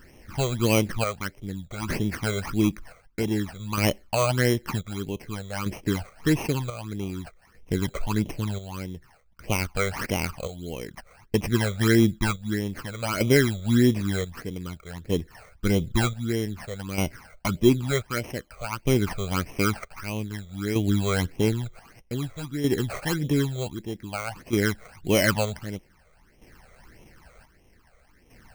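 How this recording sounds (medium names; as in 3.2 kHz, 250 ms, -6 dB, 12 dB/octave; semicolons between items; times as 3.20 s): aliases and images of a low sample rate 3.6 kHz, jitter 0%; chopped level 0.53 Hz, depth 60%, duty 55%; phasing stages 12, 1.6 Hz, lowest notch 280–1500 Hz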